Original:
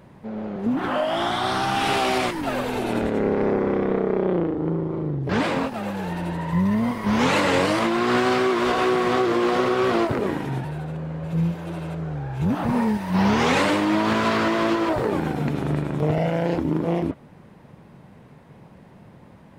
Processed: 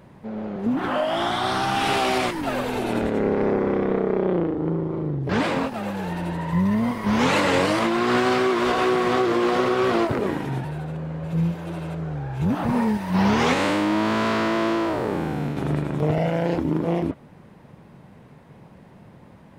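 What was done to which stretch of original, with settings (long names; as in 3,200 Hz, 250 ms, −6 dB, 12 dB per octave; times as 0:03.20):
0:13.53–0:15.57: spectrum smeared in time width 148 ms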